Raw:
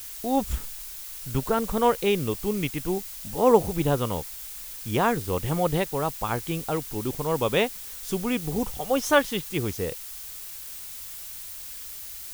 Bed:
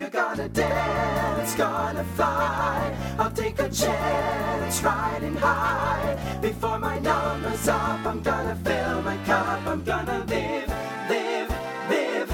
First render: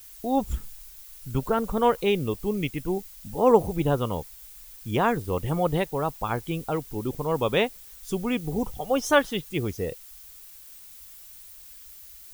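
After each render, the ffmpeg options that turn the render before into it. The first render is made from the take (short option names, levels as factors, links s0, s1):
-af "afftdn=nr=10:nf=-39"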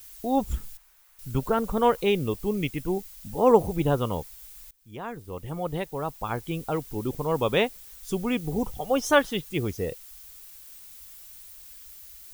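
-filter_complex "[0:a]asettb=1/sr,asplit=3[s0][s1][s2];[s0]atrim=end=0.774[s3];[s1]atrim=start=0.77:end=1.19,asetpts=PTS-STARTPTS,afade=t=in:d=0.004:c=qsin,afade=t=out:st=0.416:d=0.004:c=qsin,acrossover=split=520 2100:gain=0.141 1 0.224[s4][s5][s6];[s4][s5][s6]amix=inputs=3:normalize=0[s7];[s2]atrim=start=1.186[s8];[s3][s7]acrossfade=d=0.004:c1=hsin:c2=qsin[s9];[s9][s8]acrossfade=d=0.004:c1=qsin:c2=hsin,asplit=2[s10][s11];[s10]atrim=end=4.71,asetpts=PTS-STARTPTS,afade=t=out:st=4.706:d=0.004:c=hsin:silence=0.0668344[s12];[s11]atrim=start=4.71,asetpts=PTS-STARTPTS,afade=t=in:d=2.13:silence=0.0668344[s13];[s12][s13]concat=n=2:v=0:a=1"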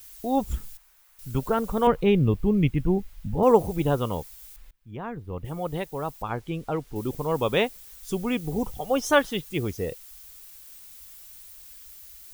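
-filter_complex "[0:a]asettb=1/sr,asplit=3[s0][s1][s2];[s0]atrim=end=1.874[s3];[s1]atrim=start=1.87:end=3.43,asetpts=PTS-STARTPTS,afade=t=in:d=0.004:c=qsin,afade=t=out:st=1.556:d=0.004:c=qsin,bass=f=250:g=11,treble=f=4000:g=-13[s4];[s2]atrim=start=3.426[s5];[s3][s4]acrossfade=d=0.004:c1=hsin:c2=qsin[s6];[s6][s5]acrossfade=d=0.004:c1=qsin:c2=hsin,asettb=1/sr,asplit=3[s7][s8][s9];[s7]atrim=end=4.564[s10];[s8]atrim=start=4.56:end=5.45,asetpts=PTS-STARTPTS,afade=t=in:d=0.004:c=qsin,afade=t=out:st=0.886:d=0.004:c=qsin,bass=f=250:g=6,treble=f=4000:g=-15[s11];[s9]atrim=start=5.446[s12];[s10][s11]acrossfade=d=0.004:c1=hsin:c2=qsin[s13];[s13][s12]acrossfade=d=0.004:c1=qsin:c2=hsin,asettb=1/sr,asplit=3[s14][s15][s16];[s14]atrim=end=6.224[s17];[s15]atrim=start=6.22:end=6.96,asetpts=PTS-STARTPTS,afade=t=in:d=0.004:c=qsin,afade=t=out:st=0.736:d=0.004:c=qsin,aemphasis=mode=reproduction:type=50kf[s18];[s16]atrim=start=6.956[s19];[s17][s18]acrossfade=d=0.004:c1=hsin:c2=qsin[s20];[s20][s19]acrossfade=d=0.004:c1=qsin:c2=hsin"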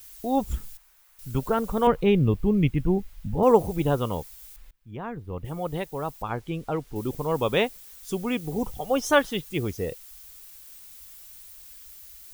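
-filter_complex "[0:a]asettb=1/sr,asplit=3[s0][s1][s2];[s0]atrim=end=7.784[s3];[s1]atrim=start=7.78:end=8.61,asetpts=PTS-STARTPTS,afade=t=in:d=0.004:c=qsin,afade=t=out:st=0.826:d=0.004:c=qsin,lowshelf=f=91:g=-7.5[s4];[s2]atrim=start=8.606[s5];[s3][s4]acrossfade=d=0.004:c1=hsin:c2=qsin[s6];[s6][s5]acrossfade=d=0.004:c1=qsin:c2=hsin"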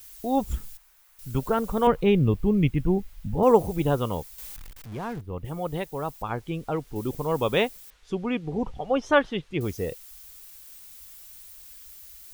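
-filter_complex "[0:a]asettb=1/sr,asplit=3[s0][s1][s2];[s0]atrim=end=4.384[s3];[s1]atrim=start=4.38:end=5.21,asetpts=PTS-STARTPTS,afade=t=in:d=0.004:c=qsin,afade=t=out:st=0.826:d=0.004:c=qsin,aeval=exprs='val(0)+0.5*0.0112*sgn(val(0))':c=same[s4];[s2]atrim=start=5.206[s5];[s3][s4]acrossfade=d=0.004:c1=hsin:c2=qsin[s6];[s6][s5]acrossfade=d=0.004:c1=qsin:c2=hsin,asettb=1/sr,asplit=3[s7][s8][s9];[s7]atrim=end=7.904[s10];[s8]atrim=start=7.9:end=9.61,asetpts=PTS-STARTPTS,afade=t=in:d=0.004:c=qsin,afade=t=out:st=1.706:d=0.004:c=qsin,lowpass=3100[s11];[s9]atrim=start=9.606[s12];[s10][s11]acrossfade=d=0.004:c1=hsin:c2=qsin[s13];[s13][s12]acrossfade=d=0.004:c1=qsin:c2=hsin"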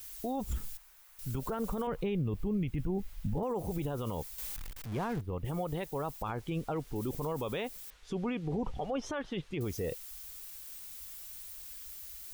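-af "acompressor=threshold=0.0631:ratio=4,alimiter=level_in=1.26:limit=0.0631:level=0:latency=1:release=24,volume=0.794"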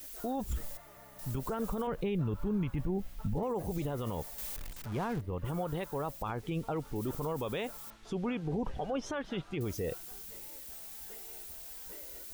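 -filter_complex "[1:a]volume=0.0266[s0];[0:a][s0]amix=inputs=2:normalize=0"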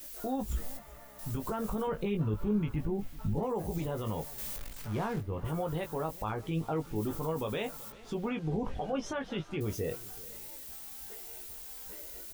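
-filter_complex "[0:a]asplit=2[s0][s1];[s1]adelay=19,volume=0.531[s2];[s0][s2]amix=inputs=2:normalize=0,aecho=1:1:382:0.0944"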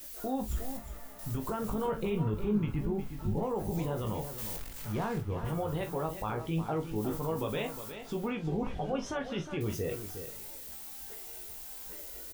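-filter_complex "[0:a]asplit=2[s0][s1];[s1]adelay=42,volume=0.282[s2];[s0][s2]amix=inputs=2:normalize=0,asplit=2[s3][s4];[s4]aecho=0:1:360:0.316[s5];[s3][s5]amix=inputs=2:normalize=0"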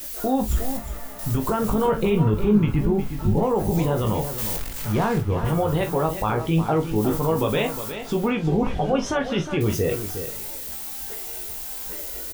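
-af "volume=3.76"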